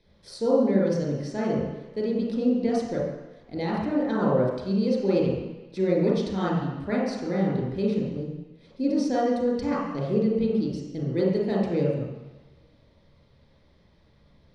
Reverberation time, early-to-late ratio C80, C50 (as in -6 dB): 1.1 s, 3.0 dB, -0.5 dB